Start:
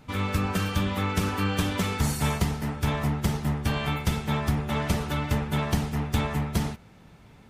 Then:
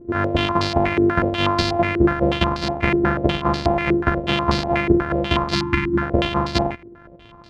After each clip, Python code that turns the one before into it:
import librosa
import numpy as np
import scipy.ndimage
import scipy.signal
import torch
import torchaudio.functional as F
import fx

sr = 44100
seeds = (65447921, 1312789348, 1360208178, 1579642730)

y = np.r_[np.sort(x[:len(x) // 128 * 128].reshape(-1, 128), axis=1).ravel(), x[len(x) // 128 * 128:]]
y = fx.spec_erase(y, sr, start_s=5.54, length_s=0.48, low_hz=380.0, high_hz=840.0)
y = fx.filter_held_lowpass(y, sr, hz=8.2, low_hz=380.0, high_hz=4500.0)
y = y * 10.0 ** (4.5 / 20.0)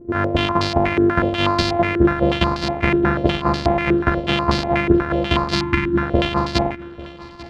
y = fx.echo_feedback(x, sr, ms=842, feedback_pct=49, wet_db=-20.0)
y = y * 10.0 ** (1.0 / 20.0)